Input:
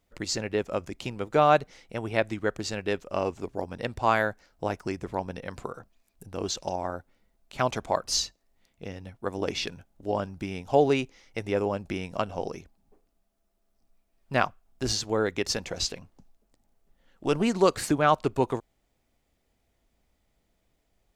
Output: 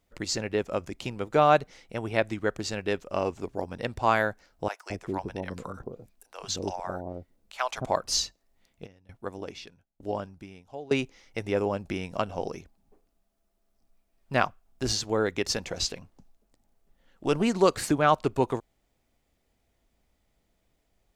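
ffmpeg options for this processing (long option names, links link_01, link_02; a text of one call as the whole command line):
ffmpeg -i in.wav -filter_complex "[0:a]asettb=1/sr,asplit=3[link_01][link_02][link_03];[link_01]atrim=end=4.684[link_04];[link_02]atrim=start=4.68:end=7.85,asetpts=PTS-STARTPTS,afade=type=in:duration=0.004:curve=qsin,afade=type=out:start_time=3.166:duration=0.004:curve=qsin,acrossover=split=630[link_05][link_06];[link_05]adelay=220[link_07];[link_07][link_06]amix=inputs=2:normalize=0,atrim=end_sample=139797[link_08];[link_03]atrim=start=7.846[link_09];[link_04][link_08]acrossfade=duration=0.004:curve1=hsin:curve2=qsin[link_10];[link_10][link_09]acrossfade=duration=0.004:curve1=qsin:curve2=hsin,asplit=3[link_11][link_12][link_13];[link_11]afade=type=out:start_time=8.85:duration=0.02[link_14];[link_12]aeval=exprs='val(0)*pow(10,-22*if(lt(mod(1.1*n/s,1),2*abs(1.1)/1000),1-mod(1.1*n/s,1)/(2*abs(1.1)/1000),(mod(1.1*n/s,1)-2*abs(1.1)/1000)/(1-2*abs(1.1)/1000))/20)':channel_layout=same,afade=type=in:start_time=8.85:duration=0.02,afade=type=out:start_time=10.91:duration=0.02[link_15];[link_13]afade=type=in:start_time=10.91:duration=0.02[link_16];[link_14][link_15][link_16]amix=inputs=3:normalize=0" out.wav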